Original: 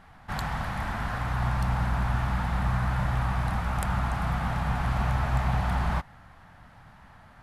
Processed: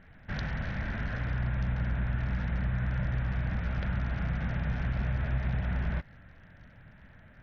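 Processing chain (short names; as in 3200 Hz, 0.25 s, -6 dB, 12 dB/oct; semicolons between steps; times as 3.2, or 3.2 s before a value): air absorption 130 m; compressor 2.5:1, threshold -27 dBFS, peak gain reduction 5 dB; band shelf 960 Hz -12.5 dB 1 oct; thin delay 0.736 s, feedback 51%, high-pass 3600 Hz, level -20.5 dB; SBC 64 kbps 48000 Hz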